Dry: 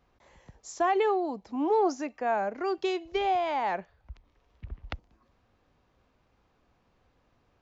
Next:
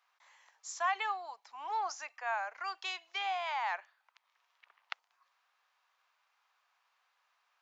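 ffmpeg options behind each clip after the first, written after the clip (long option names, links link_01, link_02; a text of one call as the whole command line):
ffmpeg -i in.wav -af "highpass=frequency=960:width=0.5412,highpass=frequency=960:width=1.3066" out.wav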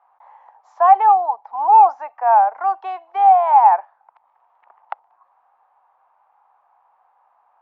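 ffmpeg -i in.wav -af "lowpass=frequency=830:width_type=q:width=4.9,acontrast=45,volume=7.5dB" out.wav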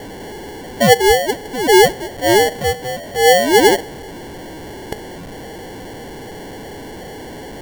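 ffmpeg -i in.wav -af "aeval=exprs='val(0)+0.5*0.0473*sgn(val(0))':channel_layout=same,acrusher=samples=35:mix=1:aa=0.000001" out.wav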